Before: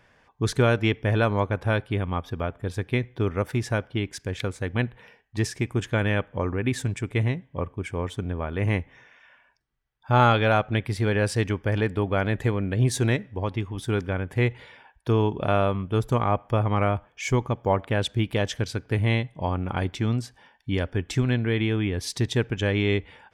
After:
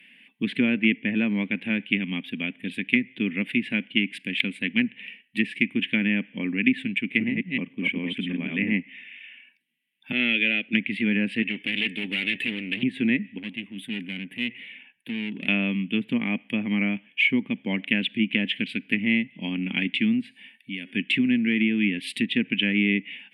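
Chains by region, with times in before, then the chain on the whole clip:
6.98–8.74 reverse delay 0.15 s, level -2 dB + high shelf 4300 Hz -10 dB
10.12–10.73 half-wave gain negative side -3 dB + high shelf 4500 Hz -8 dB + fixed phaser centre 390 Hz, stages 4
11.42–12.83 high shelf 4000 Hz +6.5 dB + comb 2.3 ms, depth 61% + hard clip -27 dBFS
13.38–15.48 bell 6100 Hz -10 dB 2 oct + notch 5200 Hz, Q 9.8 + tube stage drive 29 dB, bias 0.4
20.21–20.91 bell 3000 Hz -5.5 dB 0.21 oct + de-hum 368.5 Hz, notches 37 + compressor 4:1, threshold -35 dBFS
whole clip: EQ curve 270 Hz 0 dB, 390 Hz -16 dB, 650 Hz -23 dB, 1300 Hz -25 dB, 2000 Hz +5 dB, 2800 Hz +13 dB, 6100 Hz -28 dB, 9100 Hz +1 dB; treble ducked by the level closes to 1400 Hz, closed at -19.5 dBFS; Chebyshev high-pass 200 Hz, order 4; gain +7.5 dB

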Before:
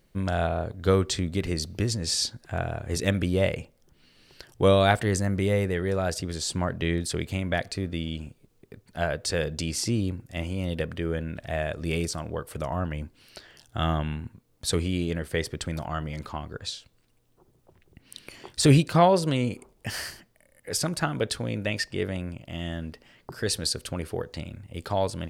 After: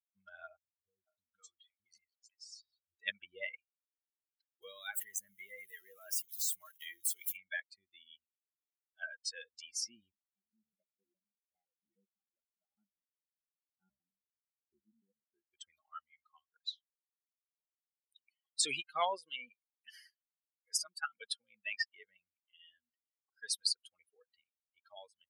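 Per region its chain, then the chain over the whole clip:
0.56–3 compressor 3:1, threshold -31 dBFS + three bands offset in time lows, highs, mids 0.34/0.51 s, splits 450/3600 Hz
4.62–7.37 switching spikes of -20 dBFS + compressor 3:1, threshold -23 dBFS
10.12–15.51 band-pass 210 Hz, Q 1.2 + shaped vibrato square 4.9 Hz, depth 250 cents
whole clip: per-bin expansion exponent 3; HPF 1400 Hz 12 dB/oct

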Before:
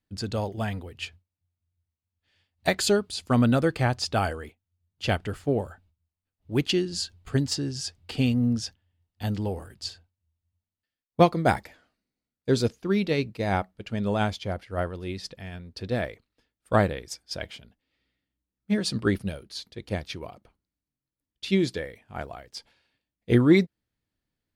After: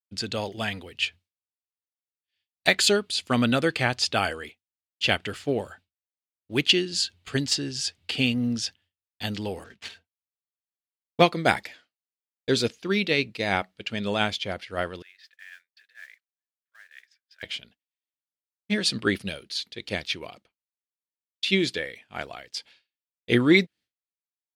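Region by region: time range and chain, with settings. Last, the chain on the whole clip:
9.64–11.22 median filter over 9 samples + comb 4.4 ms, depth 39% + decimation joined by straight lines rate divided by 3×
15.02–17.43 compressor 10:1, threshold -36 dBFS + ladder band-pass 1800 Hz, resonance 70% + modulation noise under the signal 16 dB
whole clip: weighting filter D; expander -46 dBFS; dynamic EQ 5100 Hz, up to -5 dB, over -35 dBFS, Q 1.2

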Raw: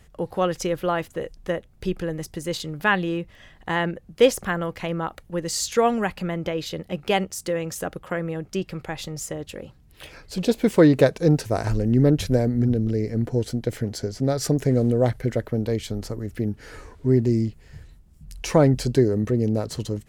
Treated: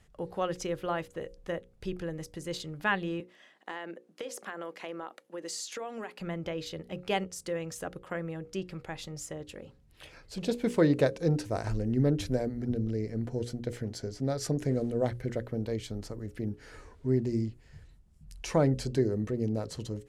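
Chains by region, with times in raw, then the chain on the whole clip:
3.2–6.2 HPF 260 Hz 24 dB/oct + compressor 12:1, threshold -25 dBFS
whole clip: LPF 11000 Hz 12 dB/oct; notches 60/120/180/240/300/360/420/480/540 Hz; gain -8 dB

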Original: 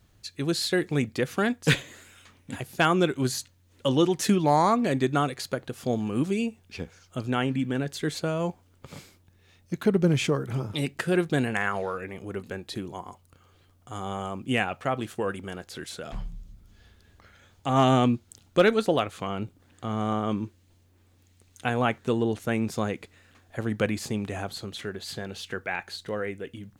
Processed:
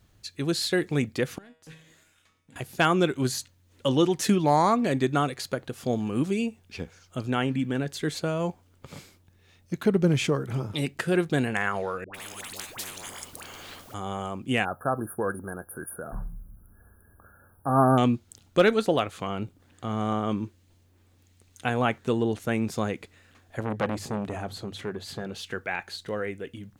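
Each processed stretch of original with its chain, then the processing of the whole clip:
1.38–2.56 sample leveller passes 1 + compressor 3:1, threshold -42 dBFS + resonator 160 Hz, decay 0.59 s, mix 80%
12.04–13.94 dispersion highs, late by 0.101 s, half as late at 700 Hz + spectral compressor 10:1
14.65–17.98 brick-wall FIR band-stop 1700–9300 Hz + high shelf 3200 Hz +11.5 dB
23.6–25.35 tilt shelf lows +3.5 dB, about 1300 Hz + notches 50/100/150 Hz + core saturation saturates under 1200 Hz
whole clip: dry

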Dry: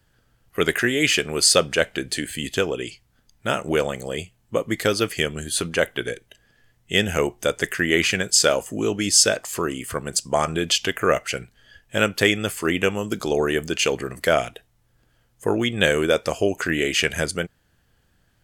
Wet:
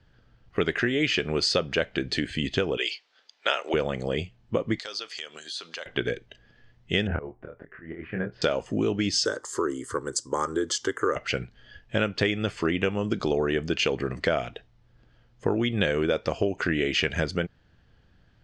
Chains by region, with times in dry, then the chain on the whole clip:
2.77–3.74 HPF 430 Hz 24 dB/oct + bell 4000 Hz +11 dB 2.5 oct
4.79–5.86 HPF 800 Hz + compressor 3:1, threshold -38 dBFS + resonant high shelf 3200 Hz +7.5 dB, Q 1.5
7.07–8.42 LPF 1700 Hz 24 dB/oct + auto swell 0.645 s + doubler 26 ms -4 dB
9.25–11.16 HPF 130 Hz + resonant high shelf 6100 Hz +12 dB, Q 1.5 + fixed phaser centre 680 Hz, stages 6
whole clip: LPF 5100 Hz 24 dB/oct; low shelf 430 Hz +4.5 dB; compressor 4:1, threshold -22 dBFS

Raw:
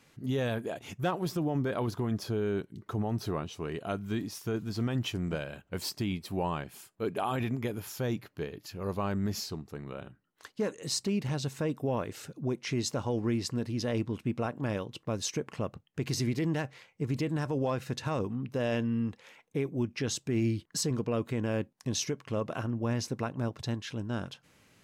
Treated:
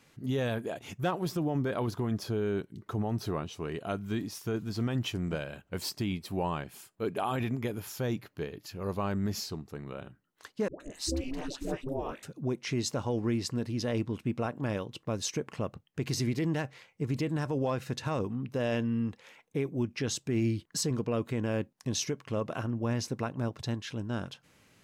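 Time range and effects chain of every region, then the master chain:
10.68–12.23 dispersion highs, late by 0.121 s, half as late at 490 Hz + ring modulator 130 Hz
whole clip: dry

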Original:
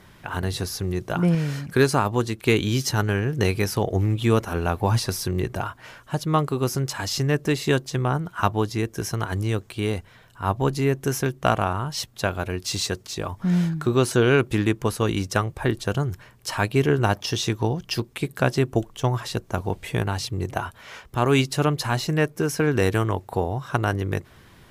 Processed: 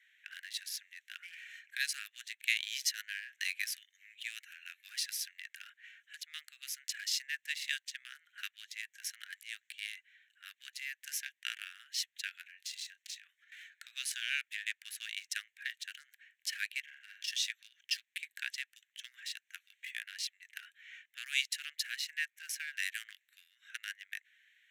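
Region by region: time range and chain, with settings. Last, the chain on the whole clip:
3.71–4.83 HPF 1500 Hz + notch 3400 Hz, Q 17
12.41–13.52 compressor 16:1, threshold -29 dBFS + doubler 31 ms -12 dB
16.8–17.28 compressor 4:1, threshold -29 dBFS + flutter echo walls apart 7.3 m, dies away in 0.57 s
whole clip: Wiener smoothing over 9 samples; steep high-pass 1700 Hz 72 dB/oct; gain -4.5 dB

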